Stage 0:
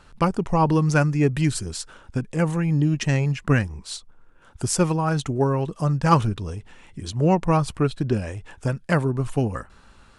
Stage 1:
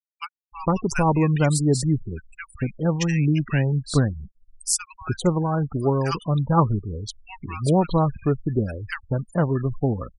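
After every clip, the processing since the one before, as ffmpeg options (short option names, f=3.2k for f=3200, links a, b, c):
-filter_complex "[0:a]highshelf=f=7.9k:g=7,acrossover=split=1400[a][b];[a]adelay=460[c];[c][b]amix=inputs=2:normalize=0,afftfilt=real='re*gte(hypot(re,im),0.0316)':imag='im*gte(hypot(re,im),0.0316)':win_size=1024:overlap=0.75"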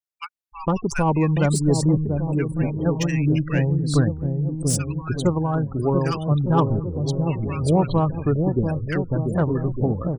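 -filter_complex "[0:a]acrossover=split=740[a][b];[a]aecho=1:1:690|1208|1596|1887|2105:0.631|0.398|0.251|0.158|0.1[c];[b]asoftclip=type=tanh:threshold=-19dB[d];[c][d]amix=inputs=2:normalize=0"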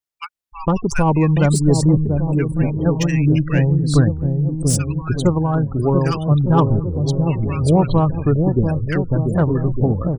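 -af "lowshelf=f=100:g=6.5,volume=3dB"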